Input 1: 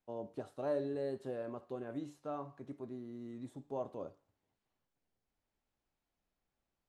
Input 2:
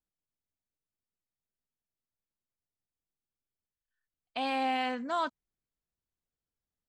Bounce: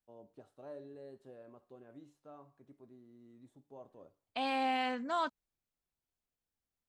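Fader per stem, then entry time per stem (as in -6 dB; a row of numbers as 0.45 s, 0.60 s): -12.5 dB, -2.5 dB; 0.00 s, 0.00 s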